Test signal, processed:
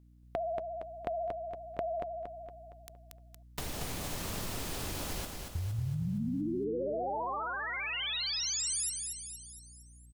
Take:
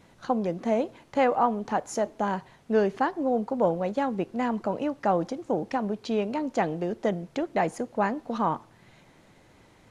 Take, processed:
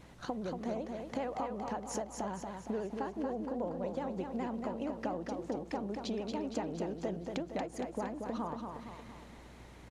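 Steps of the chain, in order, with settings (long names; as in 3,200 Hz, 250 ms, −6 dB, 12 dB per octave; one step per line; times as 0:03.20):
downward compressor 6 to 1, threshold −35 dBFS
dynamic equaliser 1,700 Hz, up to −4 dB, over −49 dBFS, Q 0.89
pitch vibrato 15 Hz 79 cents
mains hum 60 Hz, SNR 21 dB
on a send: repeating echo 232 ms, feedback 51%, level −5 dB
on the sum: every ending faded ahead of time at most 260 dB per second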